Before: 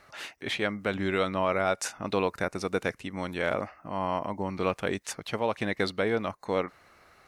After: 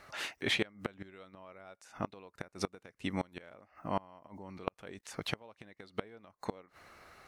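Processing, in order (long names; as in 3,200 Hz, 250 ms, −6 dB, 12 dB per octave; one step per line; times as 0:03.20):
0:04.27–0:05.14: output level in coarse steps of 24 dB
gate with flip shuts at −19 dBFS, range −27 dB
level +1 dB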